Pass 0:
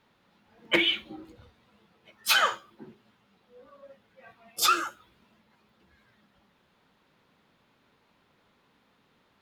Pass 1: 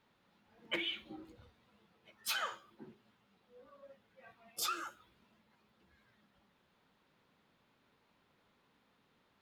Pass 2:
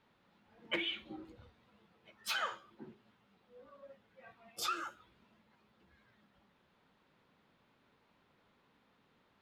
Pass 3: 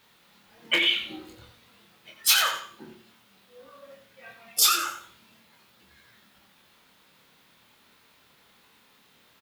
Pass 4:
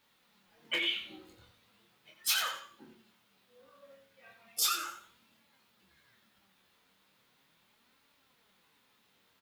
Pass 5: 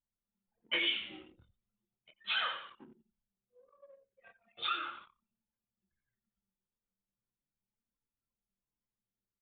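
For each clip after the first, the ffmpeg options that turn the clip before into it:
ffmpeg -i in.wav -af "acompressor=threshold=-30dB:ratio=3,volume=-6.5dB" out.wav
ffmpeg -i in.wav -af "highshelf=frequency=6800:gain=-10.5,volume=2dB" out.wav
ffmpeg -i in.wav -filter_complex "[0:a]asplit=2[link_01][link_02];[link_02]adelay=26,volume=-4.5dB[link_03];[link_01][link_03]amix=inputs=2:normalize=0,aecho=1:1:88|176|264:0.355|0.0958|0.0259,crystalizer=i=7:c=0,volume=4dB" out.wav
ffmpeg -i in.wav -af "flanger=delay=3.5:depth=7.5:regen=62:speed=0.37:shape=sinusoidal,volume=-5.5dB" out.wav
ffmpeg -i in.wav -filter_complex "[0:a]asplit=5[link_01][link_02][link_03][link_04][link_05];[link_02]adelay=97,afreqshift=-67,volume=-17.5dB[link_06];[link_03]adelay=194,afreqshift=-134,volume=-23.3dB[link_07];[link_04]adelay=291,afreqshift=-201,volume=-29.2dB[link_08];[link_05]adelay=388,afreqshift=-268,volume=-35dB[link_09];[link_01][link_06][link_07][link_08][link_09]amix=inputs=5:normalize=0,anlmdn=0.000631,aresample=8000,aresample=44100" out.wav

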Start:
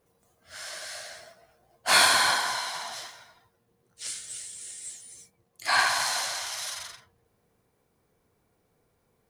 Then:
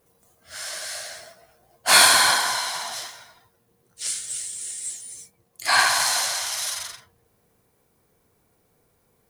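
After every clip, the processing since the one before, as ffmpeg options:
ffmpeg -i in.wav -af "highshelf=frequency=7200:gain=7.5,volume=4dB" out.wav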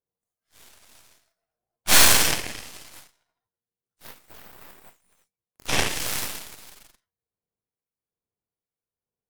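ffmpeg -i in.wav -filter_complex "[0:a]acrossover=split=1300[link_01][link_02];[link_01]aeval=exprs='val(0)*(1-0.5/2+0.5/2*cos(2*PI*1.2*n/s))':channel_layout=same[link_03];[link_02]aeval=exprs='val(0)*(1-0.5/2-0.5/2*cos(2*PI*1.2*n/s))':channel_layout=same[link_04];[link_03][link_04]amix=inputs=2:normalize=0,aeval=exprs='0.794*(cos(1*acos(clip(val(0)/0.794,-1,1)))-cos(1*PI/2))+0.00794*(cos(5*acos(clip(val(0)/0.794,-1,1)))-cos(5*PI/2))+0.355*(cos(6*acos(clip(val(0)/0.794,-1,1)))-cos(6*PI/2))+0.126*(cos(7*acos(clip(val(0)/0.794,-1,1)))-cos(7*PI/2))':channel_layout=same,volume=-3.5dB" out.wav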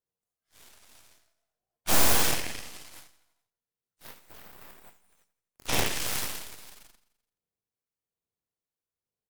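ffmpeg -i in.wav -filter_complex "[0:a]acrossover=split=1100[link_01][link_02];[link_02]aeval=exprs='(mod(5.96*val(0)+1,2)-1)/5.96':channel_layout=same[link_03];[link_01][link_03]amix=inputs=2:normalize=0,aecho=1:1:85|170|255|340|425:0.133|0.0787|0.0464|0.0274|0.0162,volume=-3dB" out.wav

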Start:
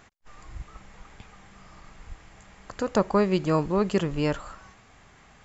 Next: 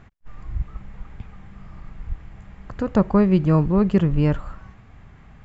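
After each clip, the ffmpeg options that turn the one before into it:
ffmpeg -i in.wav -af "bass=frequency=250:gain=13,treble=frequency=4000:gain=-14" out.wav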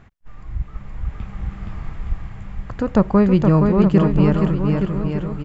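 ffmpeg -i in.wav -af "aecho=1:1:470|869.5|1209|1498|1743:0.631|0.398|0.251|0.158|0.1,dynaudnorm=framelen=470:gausssize=5:maxgain=8dB" out.wav

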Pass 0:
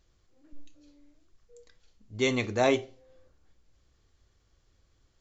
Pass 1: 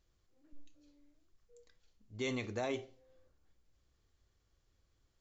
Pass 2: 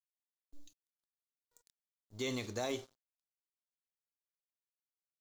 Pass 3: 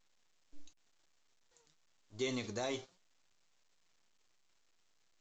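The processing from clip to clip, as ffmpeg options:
ffmpeg -i in.wav -af "alimiter=limit=-20dB:level=0:latency=1,volume=-8dB" out.wav
ffmpeg -i in.wav -filter_complex "[0:a]aeval=exprs='sgn(val(0))*max(abs(val(0))-0.00141,0)':channel_layout=same,acrossover=split=3100[link_01][link_02];[link_02]acompressor=threshold=-52dB:ratio=4:attack=1:release=60[link_03];[link_01][link_03]amix=inputs=2:normalize=0,aexciter=amount=1.9:drive=9.2:freq=3500" out.wav
ffmpeg -i in.wav -af "flanger=delay=2.5:depth=4.3:regen=64:speed=0.9:shape=triangular,volume=4dB" -ar 16000 -c:a pcm_alaw out.wav

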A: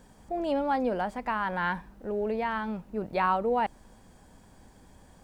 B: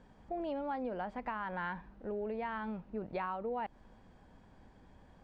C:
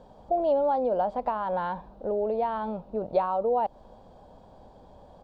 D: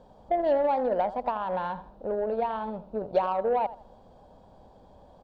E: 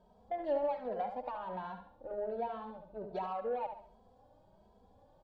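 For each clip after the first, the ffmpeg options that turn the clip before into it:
ffmpeg -i in.wav -af "lowpass=3300,acompressor=threshold=-30dB:ratio=6,volume=-4.5dB" out.wav
ffmpeg -i in.wav -af "firequalizer=gain_entry='entry(310,0);entry(570,12);entry(1900,-12);entry(3700,4);entry(6000,-1)':delay=0.05:min_phase=1,volume=5dB" out.wav
ffmpeg -i in.wav -af "aecho=1:1:81|162|243:0.211|0.055|0.0143,aeval=exprs='0.237*(cos(1*acos(clip(val(0)/0.237,-1,1)))-cos(1*PI/2))+0.00841*(cos(7*acos(clip(val(0)/0.237,-1,1)))-cos(7*PI/2))':channel_layout=same" out.wav
ffmpeg -i in.wav -filter_complex "[0:a]aecho=1:1:71|142|213|284:0.376|0.143|0.0543|0.0206,asplit=2[link_01][link_02];[link_02]adelay=2.7,afreqshift=1.3[link_03];[link_01][link_03]amix=inputs=2:normalize=1,volume=-8dB" out.wav

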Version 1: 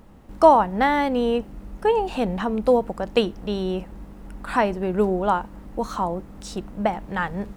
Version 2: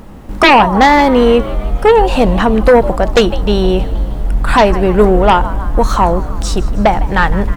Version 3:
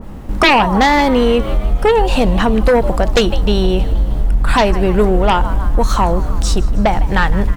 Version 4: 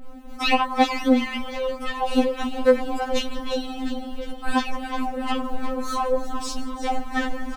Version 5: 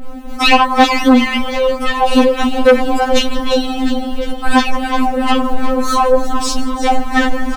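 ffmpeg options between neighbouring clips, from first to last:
ffmpeg -i in.wav -filter_complex "[0:a]asubboost=boost=5:cutoff=78,asplit=7[link_01][link_02][link_03][link_04][link_05][link_06][link_07];[link_02]adelay=156,afreqshift=80,volume=-18.5dB[link_08];[link_03]adelay=312,afreqshift=160,volume=-22.8dB[link_09];[link_04]adelay=468,afreqshift=240,volume=-27.1dB[link_10];[link_05]adelay=624,afreqshift=320,volume=-31.4dB[link_11];[link_06]adelay=780,afreqshift=400,volume=-35.7dB[link_12];[link_07]adelay=936,afreqshift=480,volume=-40dB[link_13];[link_01][link_08][link_09][link_10][link_11][link_12][link_13]amix=inputs=7:normalize=0,aeval=exprs='0.794*sin(PI/2*3.55*val(0)/0.794)':channel_layout=same" out.wav
ffmpeg -i in.wav -af "lowshelf=frequency=170:gain=5,acompressor=threshold=-11dB:ratio=2.5,adynamicequalizer=threshold=0.0398:dfrequency=2100:dqfactor=0.7:tfrequency=2100:tqfactor=0.7:attack=5:release=100:ratio=0.375:range=2.5:mode=boostabove:tftype=highshelf" out.wav
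ffmpeg -i in.wav -filter_complex "[0:a]asplit=9[link_01][link_02][link_03][link_04][link_05][link_06][link_07][link_08][link_09];[link_02]adelay=353,afreqshift=54,volume=-11.5dB[link_10];[link_03]adelay=706,afreqshift=108,volume=-15.4dB[link_11];[link_04]adelay=1059,afreqshift=162,volume=-19.3dB[link_12];[link_05]adelay=1412,afreqshift=216,volume=-23.1dB[link_13];[link_06]adelay=1765,afreqshift=270,volume=-27dB[link_14];[link_07]adelay=2118,afreqshift=324,volume=-30.9dB[link_15];[link_08]adelay=2471,afreqshift=378,volume=-34.8dB[link_16];[link_09]adelay=2824,afreqshift=432,volume=-38.6dB[link_17];[link_01][link_10][link_11][link_12][link_13][link_14][link_15][link_16][link_17]amix=inputs=9:normalize=0,afftfilt=real='re*3.46*eq(mod(b,12),0)':imag='im*3.46*eq(mod(b,12),0)':win_size=2048:overlap=0.75,volume=-7.5dB" out.wav
ffmpeg -i in.wav -af "aeval=exprs='0.562*sin(PI/2*2*val(0)/0.562)':channel_layout=same,volume=2.5dB" out.wav

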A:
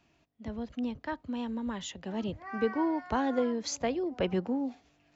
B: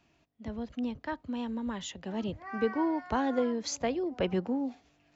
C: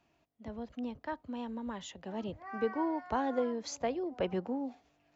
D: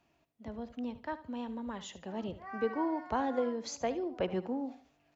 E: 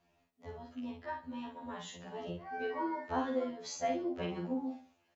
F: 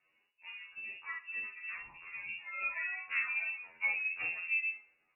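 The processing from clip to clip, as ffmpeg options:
ffmpeg -i in.wav -af anull out.wav
ffmpeg -i in.wav -af "equalizer=frequency=730:width_type=o:width=1.9:gain=5.5,volume=-6.5dB" out.wav
ffmpeg -i in.wav -af "aecho=1:1:74|148|222:0.188|0.0546|0.0158" out.wav
ffmpeg -i in.wav -filter_complex "[0:a]asplit=2[link_01][link_02];[link_02]adelay=46,volume=-3.5dB[link_03];[link_01][link_03]amix=inputs=2:normalize=0,afftfilt=real='re*2*eq(mod(b,4),0)':imag='im*2*eq(mod(b,4),0)':win_size=2048:overlap=0.75" out.wav
ffmpeg -i in.wav -af "flanger=delay=3.6:depth=6.5:regen=43:speed=0.66:shape=sinusoidal,lowpass=frequency=2500:width_type=q:width=0.5098,lowpass=frequency=2500:width_type=q:width=0.6013,lowpass=frequency=2500:width_type=q:width=0.9,lowpass=frequency=2500:width_type=q:width=2.563,afreqshift=-2900,volume=3.5dB" out.wav

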